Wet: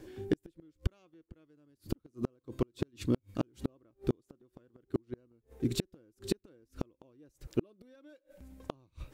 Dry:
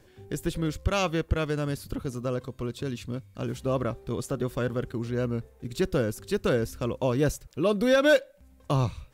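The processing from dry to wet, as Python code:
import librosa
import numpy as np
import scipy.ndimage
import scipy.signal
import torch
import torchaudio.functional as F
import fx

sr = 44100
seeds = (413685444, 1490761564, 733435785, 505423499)

y = fx.peak_eq(x, sr, hz=320.0, db=13.5, octaves=0.58)
y = fx.gate_flip(y, sr, shuts_db=-17.0, range_db=-42)
y = y * librosa.db_to_amplitude(1.5)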